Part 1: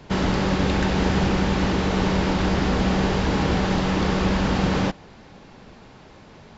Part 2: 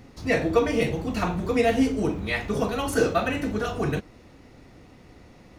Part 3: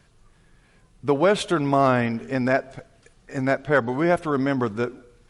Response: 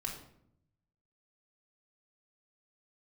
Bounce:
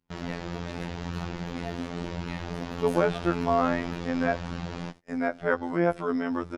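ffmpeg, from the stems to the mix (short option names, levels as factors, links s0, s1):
-filter_complex "[0:a]flanger=delay=0.7:depth=8.8:regen=-20:speed=0.88:shape=sinusoidal,volume=0.422[s0];[1:a]acompressor=threshold=0.0501:ratio=2,volume=0.316[s1];[2:a]acrossover=split=2800[s2][s3];[s3]acompressor=threshold=0.00282:ratio=4:attack=1:release=60[s4];[s2][s4]amix=inputs=2:normalize=0,equalizer=f=5200:t=o:w=0.21:g=7.5,adelay=1750,volume=0.75[s5];[s0][s1][s5]amix=inputs=3:normalize=0,afftfilt=real='hypot(re,im)*cos(PI*b)':imag='0':win_size=2048:overlap=0.75,agate=range=0.0501:threshold=0.00631:ratio=16:detection=peak"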